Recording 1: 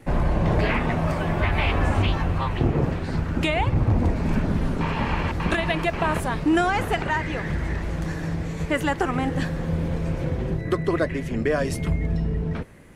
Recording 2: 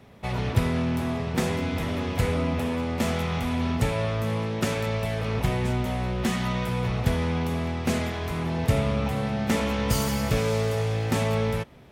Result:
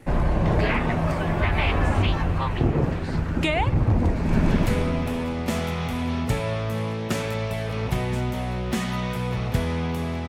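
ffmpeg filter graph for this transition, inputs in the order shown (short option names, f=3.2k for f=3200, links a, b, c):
-filter_complex "[0:a]apad=whole_dur=10.28,atrim=end=10.28,atrim=end=4.482[a];[1:a]atrim=start=1.998:end=7.8[b];[a][b]acrossfade=d=0.004:c1=hsin:c2=hsin,asplit=2[c][d];[d]afade=t=in:st=4.15:d=0.01,afade=t=out:st=4.48:d=0.01,aecho=0:1:170|340|510|680|850|1020|1190|1360|1530|1700:1|0.6|0.36|0.216|0.1296|0.07776|0.046656|0.0279936|0.0167962|0.0100777[e];[c][e]amix=inputs=2:normalize=0"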